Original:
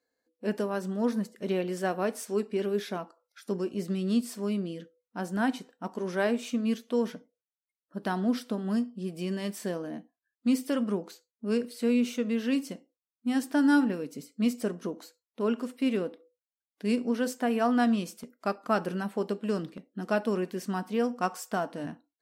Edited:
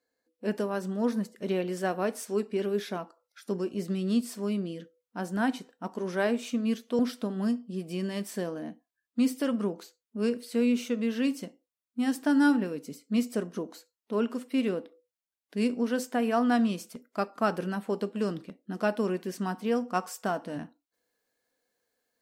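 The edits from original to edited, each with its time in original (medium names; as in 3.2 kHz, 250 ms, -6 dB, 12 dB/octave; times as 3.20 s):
6.99–8.27 s: delete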